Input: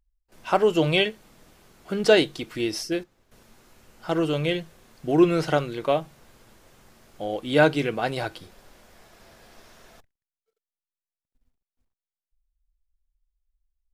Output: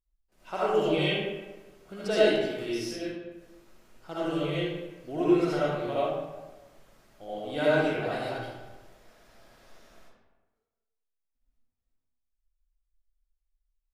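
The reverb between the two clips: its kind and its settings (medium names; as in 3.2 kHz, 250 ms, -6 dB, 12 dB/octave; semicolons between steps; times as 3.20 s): algorithmic reverb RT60 1.2 s, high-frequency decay 0.6×, pre-delay 35 ms, DRR -9.5 dB; trim -15 dB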